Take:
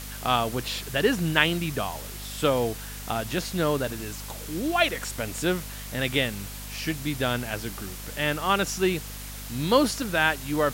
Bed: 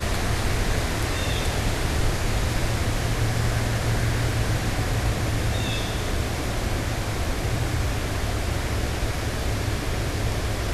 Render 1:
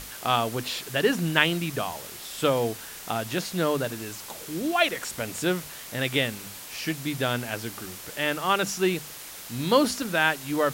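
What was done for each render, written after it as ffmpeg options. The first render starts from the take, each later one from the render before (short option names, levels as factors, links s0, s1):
-af "bandreject=f=50:t=h:w=6,bandreject=f=100:t=h:w=6,bandreject=f=150:t=h:w=6,bandreject=f=200:t=h:w=6,bandreject=f=250:t=h:w=6"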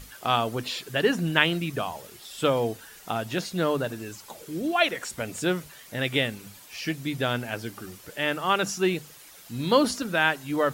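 -af "afftdn=nr=10:nf=-41"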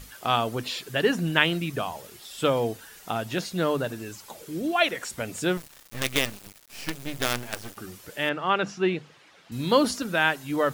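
-filter_complex "[0:a]asettb=1/sr,asplit=3[s0][s1][s2];[s0]atrim=end=5.574[s3];[s1]atrim=start=5.57:end=7.77,asetpts=PTS-STARTPTS,afade=t=in:d=0.004:c=qsin,afade=t=out:st=2.196:d=0.004:c=qsin,acrusher=bits=4:dc=4:mix=0:aa=0.000001[s4];[s2]atrim=start=7.766[s5];[s3][s4]acrossfade=d=0.004:c1=hsin:c2=qsin[s6];[s6][s5]acrossfade=d=0.004:c1=qsin:c2=hsin,asettb=1/sr,asplit=3[s7][s8][s9];[s7]atrim=end=8.294[s10];[s8]atrim=start=8.29:end=9.52,asetpts=PTS-STARTPTS,afade=t=in:d=0.004:c=qsin,afade=t=out:st=1.226:d=0.004:c=qsin,highpass=110,lowpass=3200[s11];[s9]atrim=start=9.516[s12];[s10][s11]acrossfade=d=0.004:c1=hsin:c2=qsin[s13];[s13][s12]acrossfade=d=0.004:c1=qsin:c2=hsin"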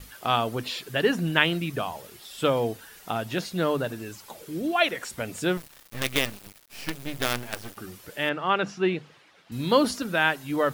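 -af "equalizer=f=7000:w=1.5:g=-3,agate=range=0.0224:threshold=0.00251:ratio=3:detection=peak"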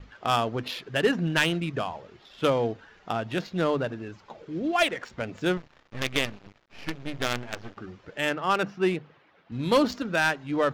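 -af "aresample=16000,asoftclip=type=hard:threshold=0.2,aresample=44100,adynamicsmooth=sensitivity=5:basefreq=2200"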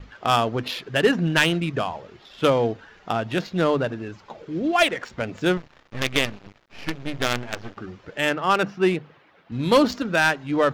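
-af "volume=1.68"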